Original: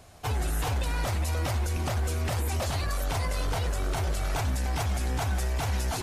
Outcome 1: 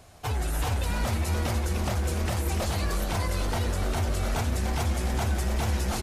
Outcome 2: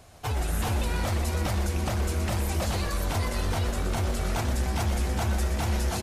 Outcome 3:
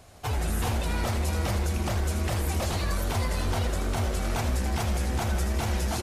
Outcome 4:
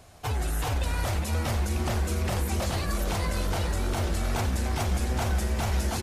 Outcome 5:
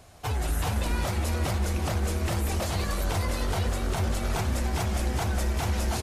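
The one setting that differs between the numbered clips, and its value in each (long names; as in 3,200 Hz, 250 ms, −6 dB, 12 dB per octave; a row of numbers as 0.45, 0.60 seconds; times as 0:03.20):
echo with shifted repeats, delay time: 294, 122, 80, 458, 189 milliseconds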